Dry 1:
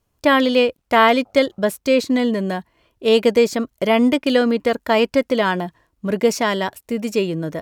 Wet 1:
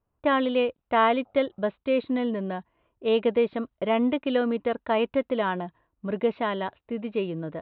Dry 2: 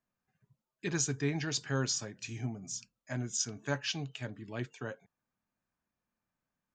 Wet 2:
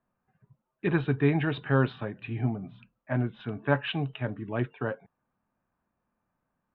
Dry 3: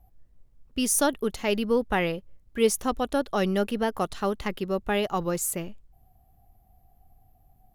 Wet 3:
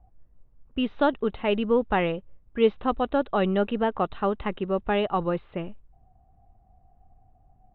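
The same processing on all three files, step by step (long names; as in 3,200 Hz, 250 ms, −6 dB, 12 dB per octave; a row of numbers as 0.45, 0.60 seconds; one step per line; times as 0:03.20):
one scale factor per block 7 bits
low-pass that shuts in the quiet parts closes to 1,900 Hz, open at −16.5 dBFS
Chebyshev low-pass with heavy ripple 3,900 Hz, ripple 3 dB
high-shelf EQ 2,900 Hz −8.5 dB
normalise the peak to −9 dBFS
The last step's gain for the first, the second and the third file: −5.5, +11.5, +4.0 decibels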